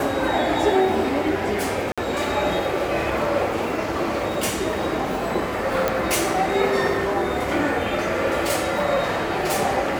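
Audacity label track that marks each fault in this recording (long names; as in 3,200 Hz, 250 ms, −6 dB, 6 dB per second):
1.920000	1.980000	drop-out 56 ms
5.880000	5.880000	click −7 dBFS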